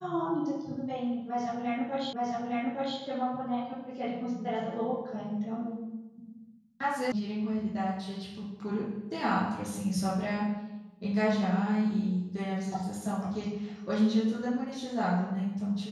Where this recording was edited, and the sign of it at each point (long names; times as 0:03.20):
0:02.13: the same again, the last 0.86 s
0:07.12: cut off before it has died away